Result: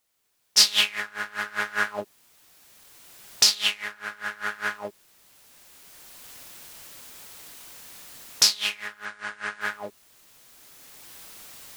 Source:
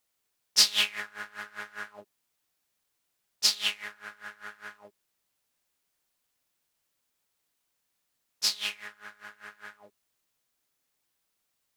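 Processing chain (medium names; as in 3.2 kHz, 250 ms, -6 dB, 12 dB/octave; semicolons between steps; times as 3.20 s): recorder AGC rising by 11 dB/s; 9.05–9.61 s: steep low-pass 10 kHz 96 dB/octave; trim +3.5 dB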